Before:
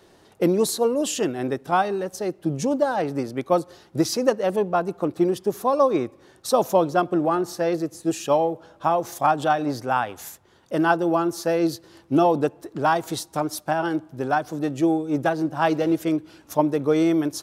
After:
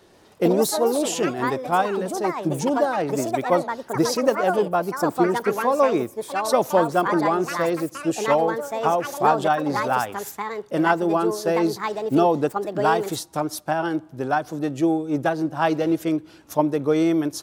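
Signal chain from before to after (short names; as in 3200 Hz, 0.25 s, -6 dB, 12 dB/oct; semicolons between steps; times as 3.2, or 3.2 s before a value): echoes that change speed 0.135 s, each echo +5 st, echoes 2, each echo -6 dB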